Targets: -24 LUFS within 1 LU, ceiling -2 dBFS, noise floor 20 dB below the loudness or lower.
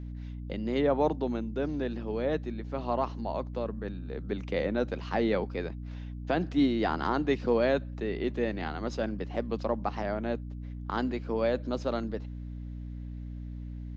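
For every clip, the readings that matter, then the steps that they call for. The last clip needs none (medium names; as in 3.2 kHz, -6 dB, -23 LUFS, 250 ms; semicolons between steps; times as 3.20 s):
dropouts 1; longest dropout 2.5 ms; hum 60 Hz; highest harmonic 300 Hz; hum level -36 dBFS; loudness -32.0 LUFS; peak level -14.0 dBFS; loudness target -24.0 LUFS
-> interpolate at 7.09 s, 2.5 ms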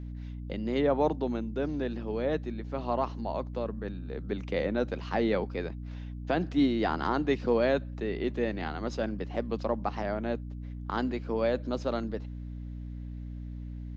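dropouts 0; hum 60 Hz; highest harmonic 300 Hz; hum level -36 dBFS
-> hum notches 60/120/180/240/300 Hz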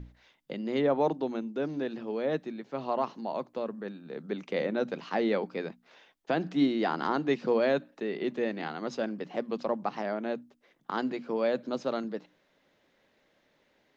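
hum not found; loudness -31.5 LUFS; peak level -15.0 dBFS; loudness target -24.0 LUFS
-> trim +7.5 dB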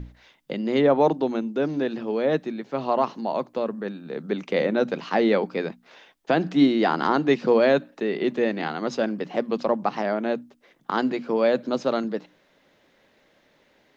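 loudness -24.0 LUFS; peak level -7.5 dBFS; noise floor -63 dBFS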